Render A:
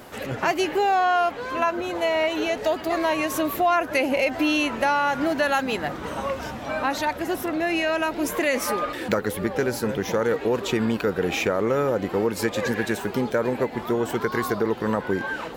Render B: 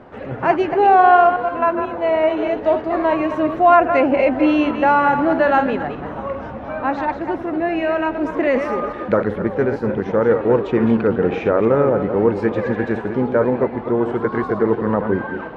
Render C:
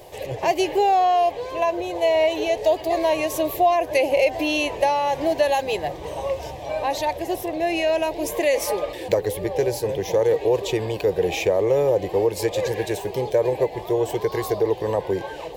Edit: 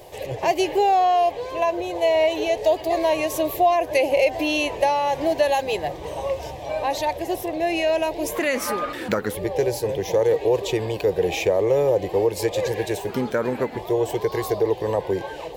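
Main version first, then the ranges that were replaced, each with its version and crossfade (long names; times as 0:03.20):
C
0:08.36–0:09.35: punch in from A
0:13.09–0:13.77: punch in from A
not used: B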